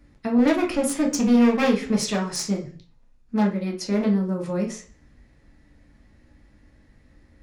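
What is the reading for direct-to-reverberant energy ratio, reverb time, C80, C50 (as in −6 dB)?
0.0 dB, 0.40 s, 15.5 dB, 10.0 dB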